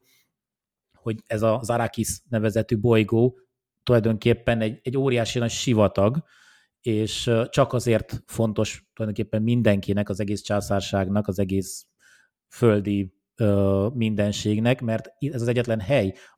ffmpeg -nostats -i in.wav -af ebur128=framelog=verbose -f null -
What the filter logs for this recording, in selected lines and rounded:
Integrated loudness:
  I:         -23.6 LUFS
  Threshold: -34.1 LUFS
Loudness range:
  LRA:         2.6 LU
  Threshold: -44.0 LUFS
  LRA low:   -25.3 LUFS
  LRA high:  -22.7 LUFS